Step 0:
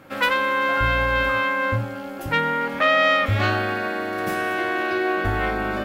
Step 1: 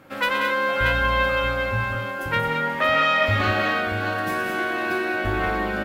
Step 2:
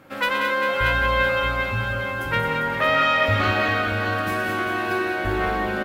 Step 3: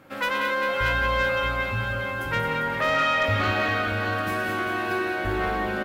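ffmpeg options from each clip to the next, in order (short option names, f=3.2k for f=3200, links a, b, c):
-af "aecho=1:1:120|184|217|580|632:0.299|0.422|0.473|0.15|0.447,volume=-2.5dB"
-af "aecho=1:1:398|796|1194|1592|1990|2388:0.316|0.168|0.0888|0.0471|0.025|0.0132"
-af "asoftclip=type=tanh:threshold=-11.5dB,volume=-2dB"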